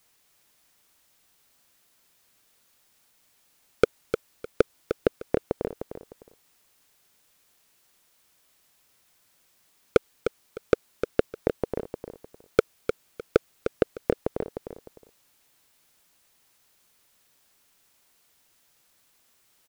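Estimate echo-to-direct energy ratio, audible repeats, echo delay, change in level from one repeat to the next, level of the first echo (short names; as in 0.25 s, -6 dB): -7.5 dB, 2, 0.304 s, -12.0 dB, -8.0 dB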